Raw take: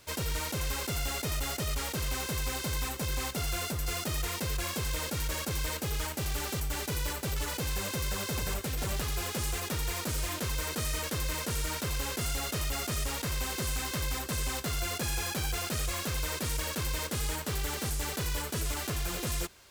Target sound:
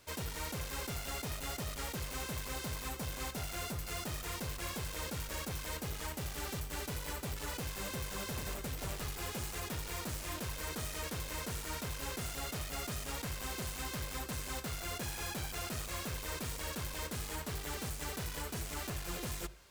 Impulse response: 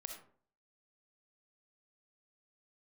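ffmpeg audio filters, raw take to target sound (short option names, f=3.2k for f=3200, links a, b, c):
-filter_complex "[0:a]aeval=exprs='0.0335*(abs(mod(val(0)/0.0335+3,4)-2)-1)':c=same,bandreject=f=50:t=h:w=6,bandreject=f=100:t=h:w=6,bandreject=f=150:t=h:w=6,asplit=2[a][b];[1:a]atrim=start_sample=2205,lowpass=3k[c];[b][c]afir=irnorm=-1:irlink=0,volume=-8.5dB[d];[a][d]amix=inputs=2:normalize=0,volume=-5.5dB"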